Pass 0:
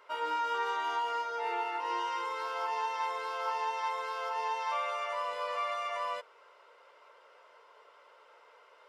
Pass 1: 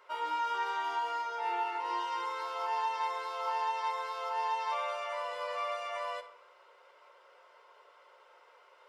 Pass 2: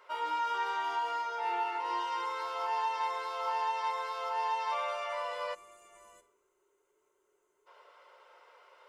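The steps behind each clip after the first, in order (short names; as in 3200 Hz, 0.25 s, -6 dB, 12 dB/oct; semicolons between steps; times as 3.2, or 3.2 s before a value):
bell 230 Hz -8.5 dB 0.48 oct; reverb RT60 0.80 s, pre-delay 5 ms, DRR 7.5 dB; gain -1.5 dB
spectral gain 5.54–7.67, 440–6000 Hz -22 dB; in parallel at -11 dB: soft clip -32 dBFS, distortion -14 dB; on the sum: gain -1 dB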